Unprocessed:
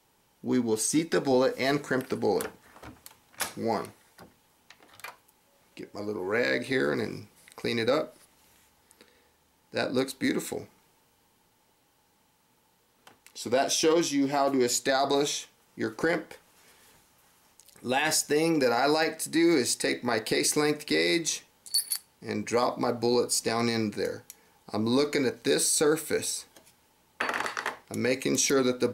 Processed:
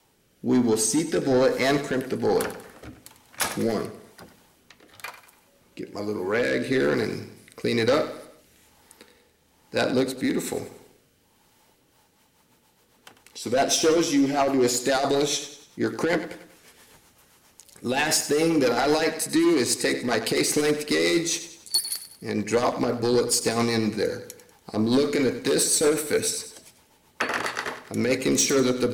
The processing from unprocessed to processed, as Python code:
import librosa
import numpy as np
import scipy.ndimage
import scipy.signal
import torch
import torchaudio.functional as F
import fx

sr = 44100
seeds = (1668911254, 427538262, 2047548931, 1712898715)

y = fx.fold_sine(x, sr, drive_db=6, ceiling_db=-12.0)
y = fx.rotary_switch(y, sr, hz=1.1, then_hz=7.5, switch_at_s=11.58)
y = fx.echo_feedback(y, sr, ms=96, feedback_pct=44, wet_db=-12.5)
y = fx.band_squash(y, sr, depth_pct=40, at=(3.44, 3.85))
y = F.gain(torch.from_numpy(y), -2.5).numpy()